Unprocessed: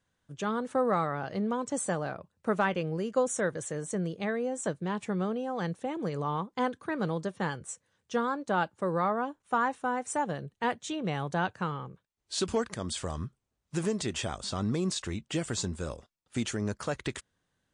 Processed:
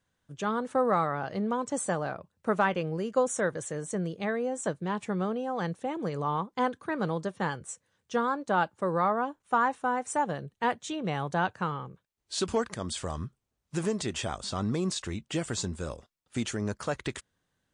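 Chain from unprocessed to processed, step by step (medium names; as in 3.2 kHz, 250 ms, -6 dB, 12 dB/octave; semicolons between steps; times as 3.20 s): dynamic bell 960 Hz, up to +3 dB, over -38 dBFS, Q 0.89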